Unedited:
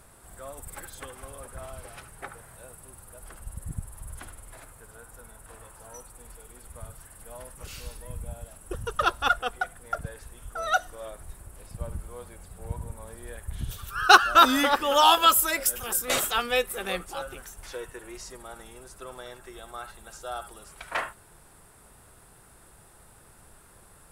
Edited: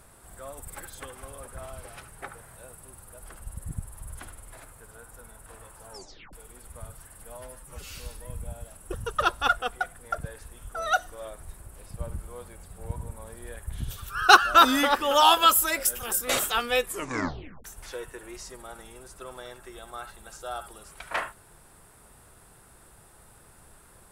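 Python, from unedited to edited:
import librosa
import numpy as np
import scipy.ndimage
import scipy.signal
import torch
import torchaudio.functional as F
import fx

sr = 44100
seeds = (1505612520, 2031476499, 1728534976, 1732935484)

y = fx.edit(x, sr, fx.tape_stop(start_s=5.91, length_s=0.42),
    fx.stretch_span(start_s=7.37, length_s=0.39, factor=1.5),
    fx.tape_stop(start_s=16.64, length_s=0.81), tone=tone)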